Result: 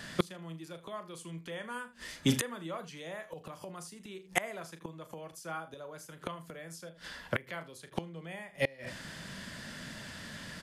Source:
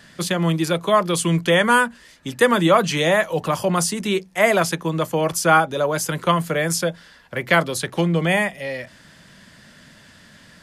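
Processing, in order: early reflections 37 ms -10.5 dB, 79 ms -16.5 dB; flipped gate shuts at -17 dBFS, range -28 dB; gain +2.5 dB

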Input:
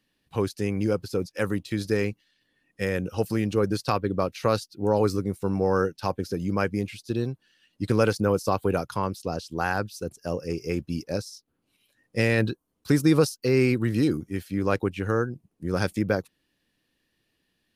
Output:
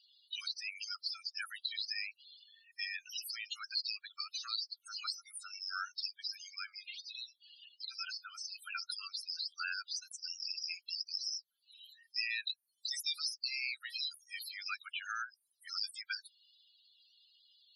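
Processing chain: steep high-pass 1300 Hz 72 dB/oct; resonant high shelf 2600 Hz +11.5 dB, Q 1.5; compressor 2.5:1, threshold -43 dBFS, peak gain reduction 17.5 dB; 6.46–8.56 flange 1.4 Hz, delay 9.3 ms, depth 3.1 ms, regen +75%; loudest bins only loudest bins 16; gain +5.5 dB

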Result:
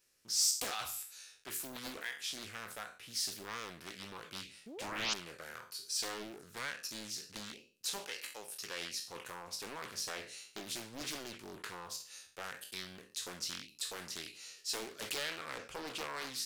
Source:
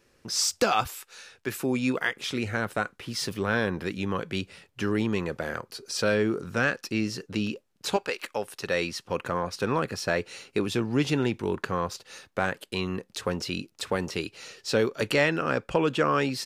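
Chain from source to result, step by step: spectral trails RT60 0.43 s; in parallel at -12 dB: hard clip -23.5 dBFS, distortion -8 dB; on the sum: painted sound rise, 4.66–5.14, 200–4800 Hz -23 dBFS; pre-emphasis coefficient 0.9; Doppler distortion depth 0.91 ms; gain -4.5 dB

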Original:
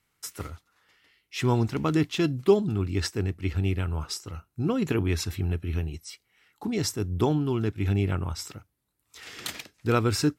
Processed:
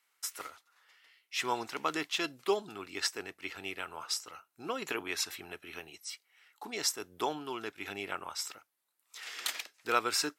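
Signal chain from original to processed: HPF 720 Hz 12 dB/oct

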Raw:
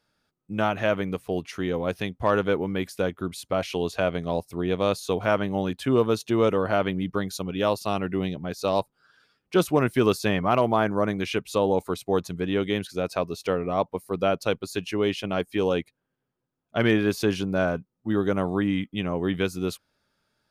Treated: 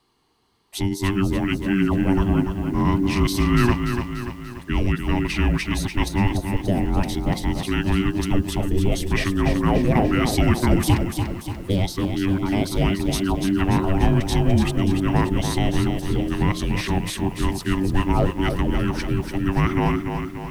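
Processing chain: whole clip reversed; in parallel at +2 dB: limiter -20.5 dBFS, peak gain reduction 11 dB; on the sum: frequency shift -480 Hz; de-hum 175.8 Hz, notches 7; lo-fi delay 0.291 s, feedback 55%, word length 8-bit, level -6.5 dB

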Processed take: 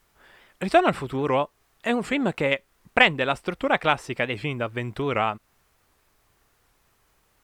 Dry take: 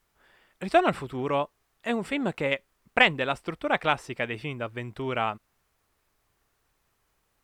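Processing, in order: in parallel at -0.5 dB: compressor, threshold -34 dBFS, peak gain reduction 19 dB; on the sum: record warp 78 rpm, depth 160 cents; gain +1.5 dB

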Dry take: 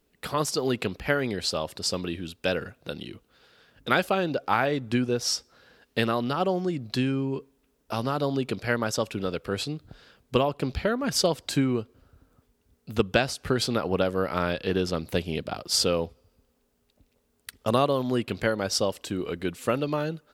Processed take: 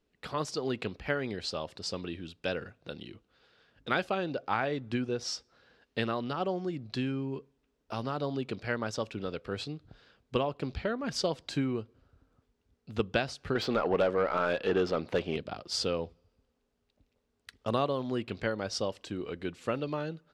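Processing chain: LPF 5700 Hz 12 dB/oct; 13.55–15.37 overdrive pedal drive 20 dB, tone 1100 Hz, clips at -8 dBFS; on a send: reverb RT60 0.25 s, pre-delay 3 ms, DRR 23 dB; on the sum: gain -6.5 dB

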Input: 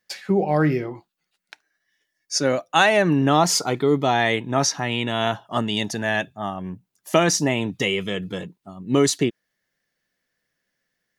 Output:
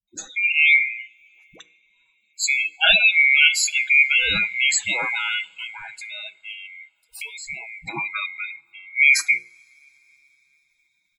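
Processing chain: band-swap scrambler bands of 2000 Hz; high shelf 11000 Hz +4 dB; notches 60/120/180/240/300/360/420/480 Hz; dynamic EQ 1500 Hz, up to +5 dB, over -38 dBFS, Q 2.9; 5.39–7.91 compressor 10:1, threshold -31 dBFS, peak gain reduction 20 dB; spectral gate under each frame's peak -15 dB strong; comb 6.2 ms, depth 71%; dispersion highs, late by 77 ms, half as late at 490 Hz; reverb, pre-delay 3 ms, DRR 17 dB; gain -1.5 dB

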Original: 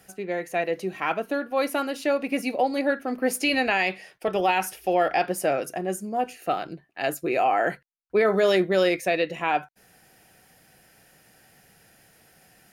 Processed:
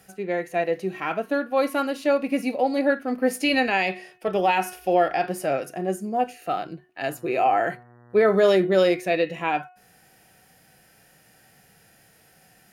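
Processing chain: harmonic-percussive split harmonic +8 dB; de-hum 364.7 Hz, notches 8; 7.07–8.35 buzz 120 Hz, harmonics 16, -47 dBFS -5 dB/oct; gain -5 dB

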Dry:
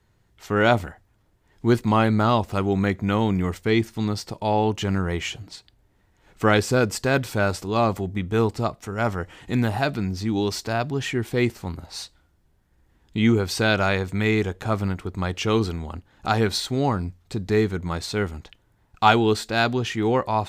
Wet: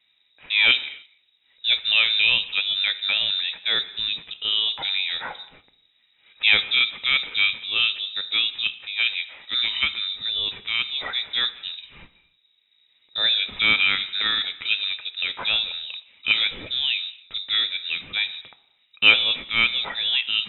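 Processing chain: bell 1400 Hz +10 dB 0.69 oct; on a send at -13 dB: reverb, pre-delay 3 ms; on the sum: inverted band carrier 3800 Hz; gain -3.5 dB

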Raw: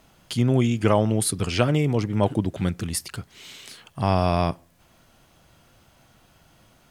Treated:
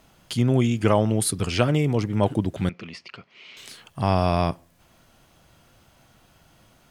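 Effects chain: 2.69–3.57 speaker cabinet 280–4100 Hz, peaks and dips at 300 Hz -8 dB, 440 Hz -3 dB, 810 Hz -6 dB, 1600 Hz -7 dB, 2400 Hz +5 dB, 3700 Hz -8 dB

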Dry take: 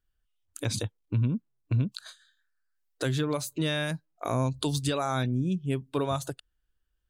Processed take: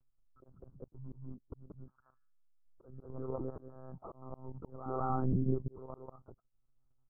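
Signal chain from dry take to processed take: bin magnitudes rounded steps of 15 dB; recorder AGC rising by 13 dB/s; steep low-pass 1300 Hz 72 dB/oct; comb 2.3 ms, depth 46%; level quantiser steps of 10 dB; reverse echo 0.188 s -4 dB; monotone LPC vocoder at 8 kHz 130 Hz; auto swell 0.682 s

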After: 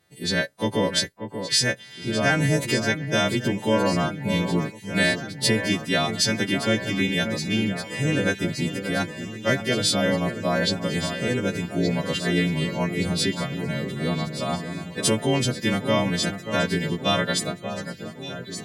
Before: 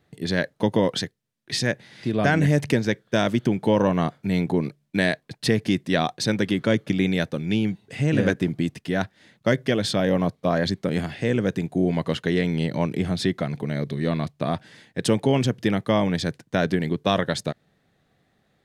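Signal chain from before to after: frequency quantiser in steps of 2 st; echo with dull and thin repeats by turns 0.586 s, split 2400 Hz, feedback 81%, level -9 dB; gain -1.5 dB

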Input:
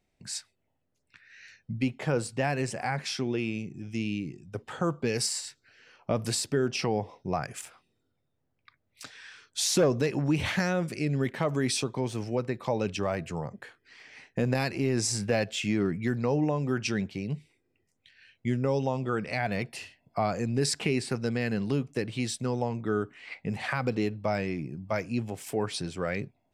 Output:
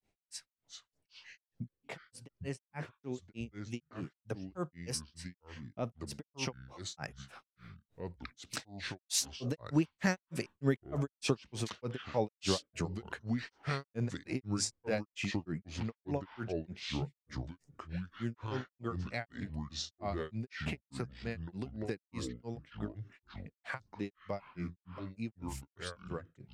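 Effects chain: Doppler pass-by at 11.11, 18 m/s, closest 25 m; compressor 2:1, threshold -56 dBFS, peak gain reduction 17.5 dB; grains 0.17 s, grains 3.3/s, spray 16 ms, pitch spread up and down by 0 st; echoes that change speed 0.27 s, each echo -5 st, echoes 2, each echo -6 dB; gain +17.5 dB

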